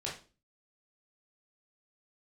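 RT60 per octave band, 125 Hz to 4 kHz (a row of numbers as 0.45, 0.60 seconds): 0.45, 0.50, 0.40, 0.30, 0.30, 0.30 seconds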